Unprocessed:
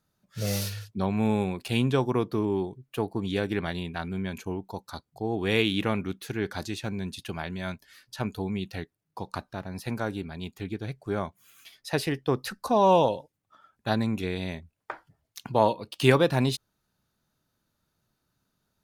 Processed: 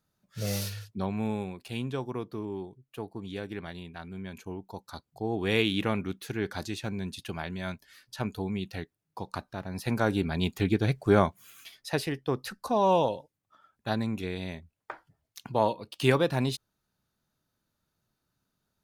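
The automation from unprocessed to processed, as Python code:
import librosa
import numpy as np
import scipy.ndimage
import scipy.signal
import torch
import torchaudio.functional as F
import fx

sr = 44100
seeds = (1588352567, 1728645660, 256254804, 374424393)

y = fx.gain(x, sr, db=fx.line((0.88, -2.5), (1.6, -9.0), (4.02, -9.0), (5.23, -1.5), (9.57, -1.5), (10.36, 8.5), (11.2, 8.5), (12.08, -3.5)))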